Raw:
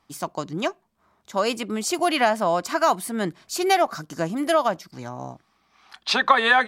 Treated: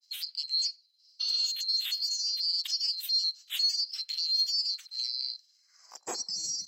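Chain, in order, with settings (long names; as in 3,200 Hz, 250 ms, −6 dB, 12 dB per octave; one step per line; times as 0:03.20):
neighbouring bands swapped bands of 4,000 Hz
healed spectral selection 0:01.24–0:01.47, 380–6,300 Hz after
in parallel at +2 dB: downward compressor, threshold −32 dBFS, peak gain reduction 19.5 dB
on the sum: brickwall limiter −15.5 dBFS, peak gain reduction 13.5 dB
granular cloud, spray 15 ms, pitch spread up and down by 0 semitones
high-pass filter sweep 3,300 Hz → 200 Hz, 0:05.52–0:06.30
on a send: feedback echo with a band-pass in the loop 91 ms, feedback 41%, band-pass 1,000 Hz, level −23 dB
on the sum: level −8.5 dB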